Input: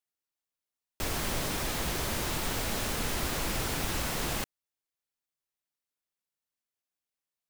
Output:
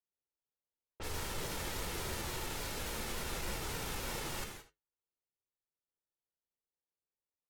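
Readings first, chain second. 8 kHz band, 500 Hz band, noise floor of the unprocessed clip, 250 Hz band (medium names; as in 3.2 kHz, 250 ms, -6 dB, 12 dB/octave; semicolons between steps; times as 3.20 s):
-7.5 dB, -7.0 dB, under -85 dBFS, -9.5 dB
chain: comb 2.2 ms, depth 31%; delay 78 ms -17 dB; peak limiter -28 dBFS, peak gain reduction 10 dB; flange 0.31 Hz, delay 4.6 ms, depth 6.9 ms, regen -65%; level-controlled noise filter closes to 770 Hz, open at -39 dBFS; gated-style reverb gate 200 ms flat, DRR 4 dB; vibrato with a chosen wave saw down 3.5 Hz, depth 100 cents; trim +1 dB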